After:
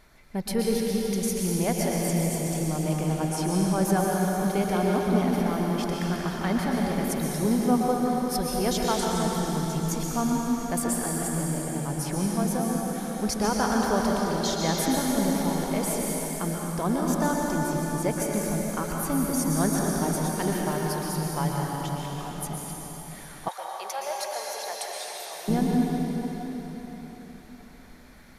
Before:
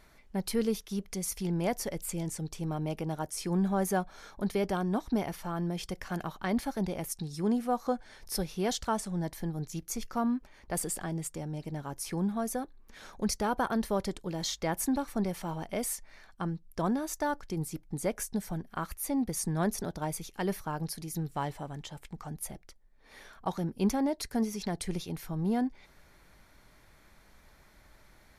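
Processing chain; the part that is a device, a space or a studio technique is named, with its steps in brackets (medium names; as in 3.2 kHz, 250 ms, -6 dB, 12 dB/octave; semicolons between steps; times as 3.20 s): cathedral (reverberation RT60 4.5 s, pre-delay 111 ms, DRR -3 dB); 23.48–25.48 s: inverse Chebyshev high-pass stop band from 280 Hz, stop band 40 dB; trim +2.5 dB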